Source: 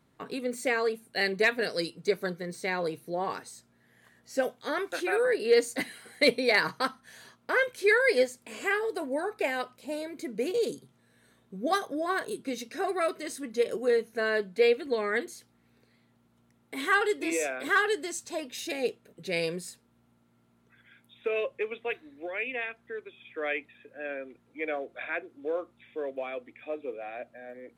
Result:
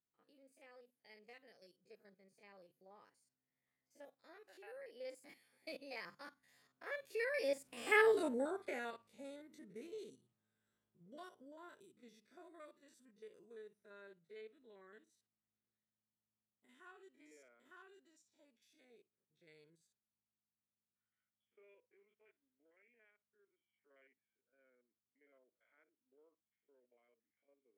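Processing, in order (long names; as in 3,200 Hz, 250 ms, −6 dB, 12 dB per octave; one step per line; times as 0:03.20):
spectrum averaged block by block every 50 ms
source passing by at 0:08.08, 30 m/s, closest 4.4 metres
level +1.5 dB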